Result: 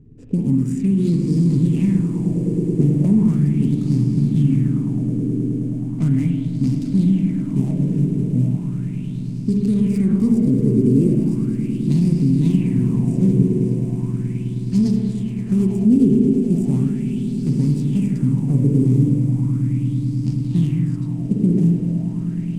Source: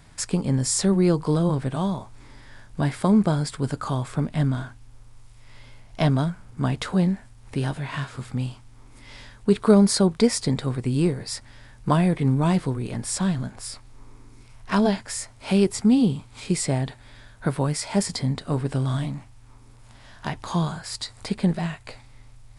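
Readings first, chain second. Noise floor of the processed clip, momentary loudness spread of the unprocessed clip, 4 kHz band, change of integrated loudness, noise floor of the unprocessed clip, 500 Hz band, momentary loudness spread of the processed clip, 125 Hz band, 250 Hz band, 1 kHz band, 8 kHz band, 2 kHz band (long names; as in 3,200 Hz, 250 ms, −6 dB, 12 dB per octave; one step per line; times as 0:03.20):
−26 dBFS, 14 LU, below −10 dB, +5.5 dB, −49 dBFS, −1.0 dB, 7 LU, +8.5 dB, +7.5 dB, below −15 dB, below −10 dB, below −10 dB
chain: running median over 41 samples
flat-topped bell 1,000 Hz −15 dB
spring reverb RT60 1.8 s, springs 41/48/57 ms, chirp 45 ms, DRR 2.5 dB
brickwall limiter −16.5 dBFS, peak gain reduction 11 dB
low-pass that shuts in the quiet parts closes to 2,900 Hz, open at −21.5 dBFS
graphic EQ with 10 bands 125 Hz +5 dB, 250 Hz +10 dB, 500 Hz −11 dB, 1,000 Hz +3 dB, 2,000 Hz −7 dB, 4,000 Hz −10 dB, 8,000 Hz +9 dB
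on a send: echo that builds up and dies away 106 ms, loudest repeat 8, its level −13 dB
on the sum: auto-filter bell 0.37 Hz 410–4,900 Hz +14 dB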